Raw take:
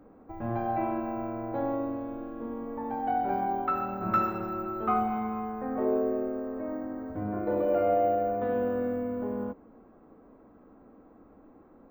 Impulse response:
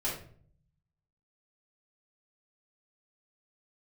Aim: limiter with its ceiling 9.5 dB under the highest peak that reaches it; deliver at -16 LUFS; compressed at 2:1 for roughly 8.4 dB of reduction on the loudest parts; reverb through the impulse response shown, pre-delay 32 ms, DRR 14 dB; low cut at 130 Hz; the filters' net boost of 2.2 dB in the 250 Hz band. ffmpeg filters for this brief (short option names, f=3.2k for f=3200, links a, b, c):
-filter_complex "[0:a]highpass=130,equalizer=f=250:t=o:g=3,acompressor=threshold=-37dB:ratio=2,alimiter=level_in=8dB:limit=-24dB:level=0:latency=1,volume=-8dB,asplit=2[a][b];[1:a]atrim=start_sample=2205,adelay=32[c];[b][c]afir=irnorm=-1:irlink=0,volume=-19.5dB[d];[a][d]amix=inputs=2:normalize=0,volume=23.5dB"